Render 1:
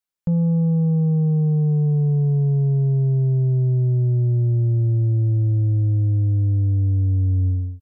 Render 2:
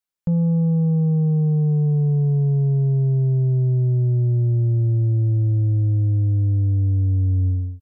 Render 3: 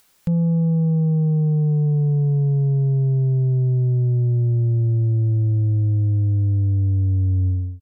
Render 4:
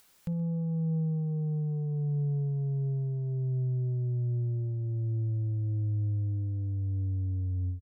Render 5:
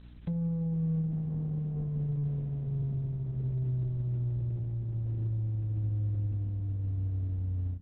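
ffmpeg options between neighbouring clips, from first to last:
-af anull
-af "acompressor=mode=upward:threshold=-36dB:ratio=2.5"
-af "alimiter=level_in=0.5dB:limit=-24dB:level=0:latency=1,volume=-0.5dB,aecho=1:1:56|124:0.112|0.1,volume=-3.5dB"
-af "aeval=exprs='val(0)+0.00447*(sin(2*PI*60*n/s)+sin(2*PI*2*60*n/s)/2+sin(2*PI*3*60*n/s)/3+sin(2*PI*4*60*n/s)/4+sin(2*PI*5*60*n/s)/5)':c=same" -ar 48000 -c:a libopus -b:a 6k

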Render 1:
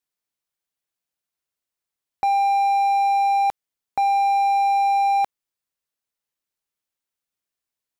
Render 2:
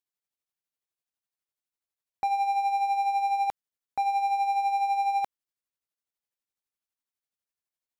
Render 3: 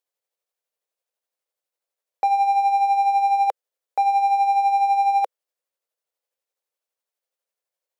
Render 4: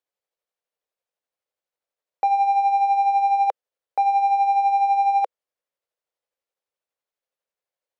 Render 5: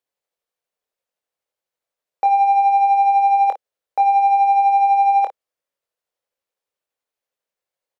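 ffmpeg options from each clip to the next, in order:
-af "tremolo=f=12:d=0.52,volume=-5dB"
-af "highpass=f=510:t=q:w=3.9,volume=3dB"
-af "highshelf=f=5.5k:g=-11"
-af "aecho=1:1:24|55:0.422|0.211,volume=2dB"

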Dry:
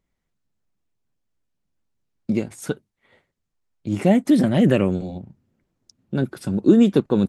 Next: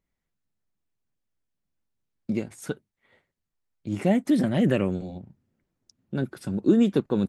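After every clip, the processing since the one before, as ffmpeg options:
-af "equalizer=f=1.8k:t=o:w=0.77:g=2,volume=-5.5dB"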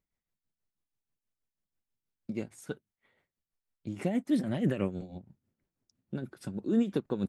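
-af "tremolo=f=6.2:d=0.69,volume=-4dB"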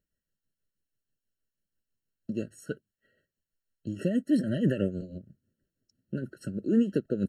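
-af "afftfilt=real='re*eq(mod(floor(b*sr/1024/650),2),0)':imag='im*eq(mod(floor(b*sr/1024/650),2),0)':win_size=1024:overlap=0.75,volume=3dB"

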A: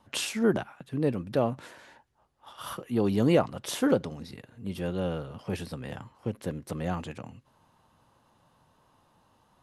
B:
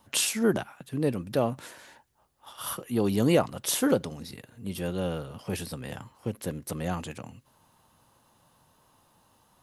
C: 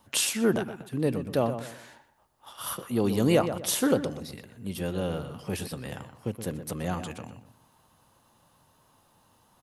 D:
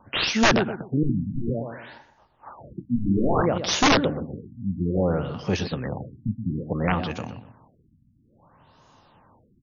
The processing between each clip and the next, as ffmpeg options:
-af "aemphasis=mode=production:type=50kf"
-filter_complex "[0:a]asplit=2[a][b];[b]adelay=123,lowpass=f=2.3k:p=1,volume=-9.5dB,asplit=2[c][d];[d]adelay=123,lowpass=f=2.3k:p=1,volume=0.32,asplit=2[e][f];[f]adelay=123,lowpass=f=2.3k:p=1,volume=0.32,asplit=2[g][h];[h]adelay=123,lowpass=f=2.3k:p=1,volume=0.32[i];[a][c][e][g][i]amix=inputs=5:normalize=0"
-af "aeval=exprs='(mod(8.91*val(0)+1,2)-1)/8.91':c=same,afftfilt=real='re*lt(b*sr/1024,270*pow(7100/270,0.5+0.5*sin(2*PI*0.59*pts/sr)))':imag='im*lt(b*sr/1024,270*pow(7100/270,0.5+0.5*sin(2*PI*0.59*pts/sr)))':win_size=1024:overlap=0.75,volume=8dB"

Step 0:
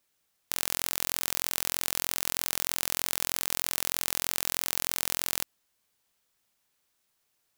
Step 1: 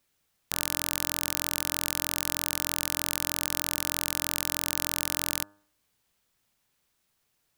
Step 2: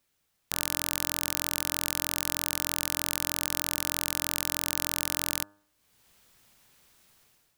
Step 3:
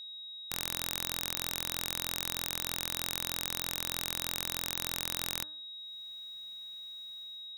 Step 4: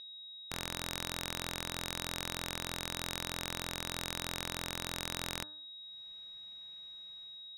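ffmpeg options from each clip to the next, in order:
-af "bass=f=250:g=6,treble=f=4k:g=-2,bandreject=f=101.2:t=h:w=4,bandreject=f=202.4:t=h:w=4,bandreject=f=303.6:t=h:w=4,bandreject=f=404.8:t=h:w=4,bandreject=f=506:t=h:w=4,bandreject=f=607.2:t=h:w=4,bandreject=f=708.4:t=h:w=4,bandreject=f=809.6:t=h:w=4,bandreject=f=910.8:t=h:w=4,bandreject=f=1.012k:t=h:w=4,bandreject=f=1.1132k:t=h:w=4,bandreject=f=1.2144k:t=h:w=4,bandreject=f=1.3156k:t=h:w=4,bandreject=f=1.4168k:t=h:w=4,bandreject=f=1.518k:t=h:w=4,bandreject=f=1.6192k:t=h:w=4,bandreject=f=1.7204k:t=h:w=4,volume=2dB"
-af "dynaudnorm=f=120:g=7:m=13.5dB,volume=-1dB"
-af "aeval=exprs='val(0)+0.0141*sin(2*PI*3800*n/s)':c=same,volume=-5.5dB"
-af "adynamicsmooth=sensitivity=1.5:basefreq=3.2k,volume=3dB"

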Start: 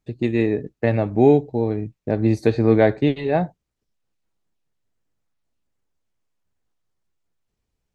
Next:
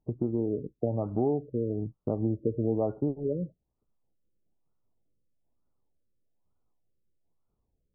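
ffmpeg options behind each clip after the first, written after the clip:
-af "acompressor=threshold=-28dB:ratio=3,afftfilt=real='re*lt(b*sr/1024,560*pow(1500/560,0.5+0.5*sin(2*PI*1.1*pts/sr)))':imag='im*lt(b*sr/1024,560*pow(1500/560,0.5+0.5*sin(2*PI*1.1*pts/sr)))':win_size=1024:overlap=0.75"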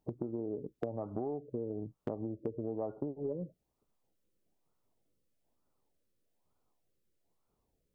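-af "acompressor=threshold=-36dB:ratio=8,aeval=exprs='0.0531*(cos(1*acos(clip(val(0)/0.0531,-1,1)))-cos(1*PI/2))+0.00422*(cos(2*acos(clip(val(0)/0.0531,-1,1)))-cos(2*PI/2))':c=same,lowshelf=f=210:g=-10.5,volume=5.5dB"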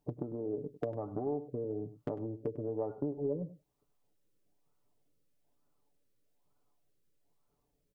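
-af "aecho=1:1:6.9:0.47,aecho=1:1:100:0.188"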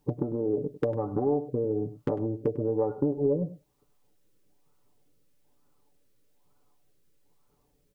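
-af "asuperstop=centerf=660:order=20:qfactor=6.6,volume=9dB"

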